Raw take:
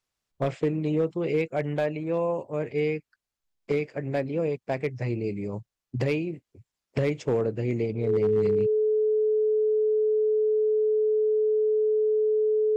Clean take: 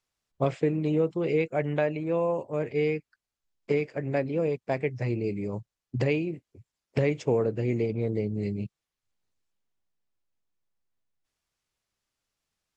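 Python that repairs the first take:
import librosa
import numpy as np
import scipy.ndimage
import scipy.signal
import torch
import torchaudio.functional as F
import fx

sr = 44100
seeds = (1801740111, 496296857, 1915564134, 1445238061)

y = fx.fix_declip(x, sr, threshold_db=-17.5)
y = fx.notch(y, sr, hz=430.0, q=30.0)
y = fx.gain(y, sr, db=fx.steps((0.0, 0.0), (10.09, 6.5)))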